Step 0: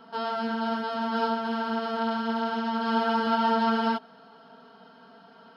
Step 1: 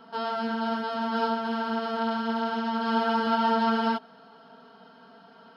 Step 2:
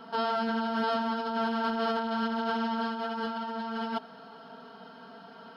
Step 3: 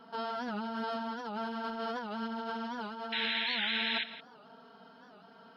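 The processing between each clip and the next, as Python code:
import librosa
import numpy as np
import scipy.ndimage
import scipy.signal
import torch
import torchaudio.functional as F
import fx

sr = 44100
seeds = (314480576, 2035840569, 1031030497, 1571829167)

y1 = x
y2 = fx.over_compress(y1, sr, threshold_db=-31.0, ratio=-1.0)
y3 = fx.spec_paint(y2, sr, seeds[0], shape='noise', start_s=3.12, length_s=0.92, low_hz=1500.0, high_hz=4100.0, level_db=-26.0)
y3 = y3 + 10.0 ** (-14.5 / 20.0) * np.pad(y3, (int(169 * sr / 1000.0), 0))[:len(y3)]
y3 = fx.record_warp(y3, sr, rpm=78.0, depth_cents=160.0)
y3 = y3 * librosa.db_to_amplitude(-7.5)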